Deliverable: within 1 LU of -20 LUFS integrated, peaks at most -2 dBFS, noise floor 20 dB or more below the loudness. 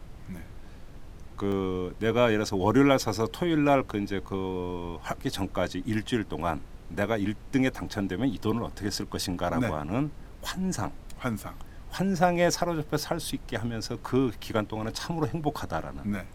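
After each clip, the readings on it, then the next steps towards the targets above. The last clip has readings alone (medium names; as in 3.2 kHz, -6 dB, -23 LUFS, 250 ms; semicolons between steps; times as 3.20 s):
dropouts 2; longest dropout 1.3 ms; noise floor -45 dBFS; noise floor target -49 dBFS; loudness -29.0 LUFS; peak level -6.0 dBFS; loudness target -20.0 LUFS
-> interpolate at 1.52/13.64 s, 1.3 ms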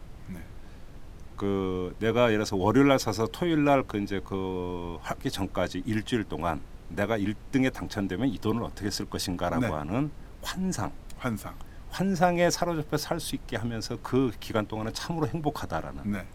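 dropouts 0; noise floor -45 dBFS; noise floor target -49 dBFS
-> noise print and reduce 6 dB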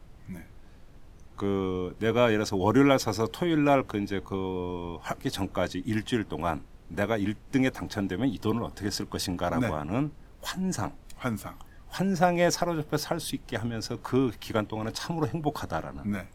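noise floor -51 dBFS; loudness -29.0 LUFS; peak level -6.0 dBFS; loudness target -20.0 LUFS
-> trim +9 dB; peak limiter -2 dBFS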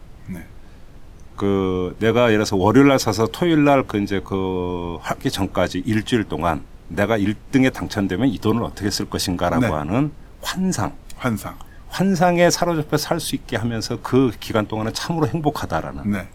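loudness -20.5 LUFS; peak level -2.0 dBFS; noise floor -42 dBFS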